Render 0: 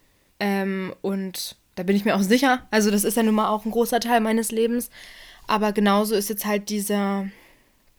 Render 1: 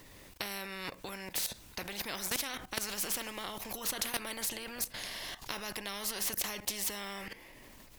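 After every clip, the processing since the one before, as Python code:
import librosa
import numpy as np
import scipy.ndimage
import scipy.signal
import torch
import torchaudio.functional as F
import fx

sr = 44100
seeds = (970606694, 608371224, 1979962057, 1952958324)

y = fx.level_steps(x, sr, step_db=16)
y = fx.spectral_comp(y, sr, ratio=4.0)
y = y * 10.0 ** (-8.0 / 20.0)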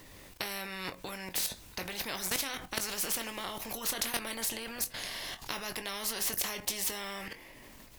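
y = fx.doubler(x, sr, ms=22.0, db=-10)
y = y * 10.0 ** (1.5 / 20.0)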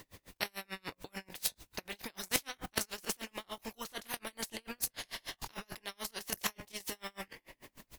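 y = fx.level_steps(x, sr, step_db=12)
y = y * 10.0 ** (-35 * (0.5 - 0.5 * np.cos(2.0 * np.pi * 6.8 * np.arange(len(y)) / sr)) / 20.0)
y = y * 10.0 ** (9.5 / 20.0)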